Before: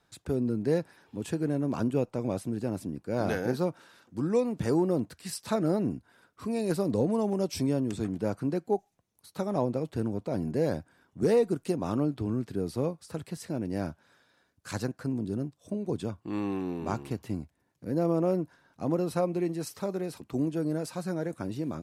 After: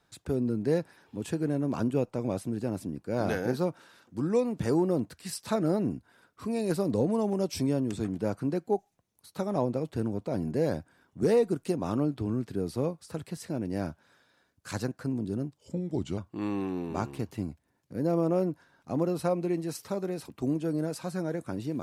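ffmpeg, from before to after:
-filter_complex "[0:a]asplit=3[s0][s1][s2];[s0]atrim=end=15.584[s3];[s1]atrim=start=15.58:end=16.09,asetpts=PTS-STARTPTS,asetrate=37926,aresample=44100,atrim=end_sample=26152,asetpts=PTS-STARTPTS[s4];[s2]atrim=start=16.086[s5];[s3][s4]acrossfade=d=0.004:c1=hsin:c2=hsin[s6];[s6][s5]acrossfade=d=0.004:c1=hsin:c2=hsin"

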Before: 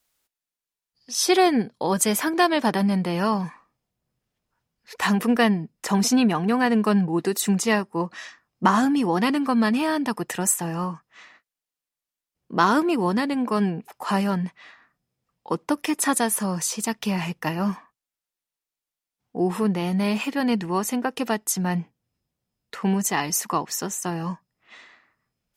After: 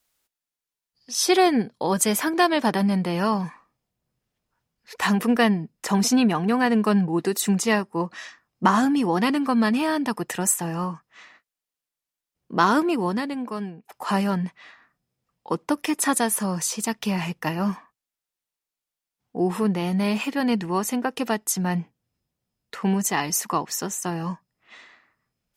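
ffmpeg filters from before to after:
-filter_complex "[0:a]asplit=2[s0][s1];[s0]atrim=end=13.89,asetpts=PTS-STARTPTS,afade=t=out:st=12.81:d=1.08:silence=0.141254[s2];[s1]atrim=start=13.89,asetpts=PTS-STARTPTS,afade=t=in:d=0.004:c=hsin:silence=0.141254[s3];[s2][s3]concat=n=2:v=0:a=1"

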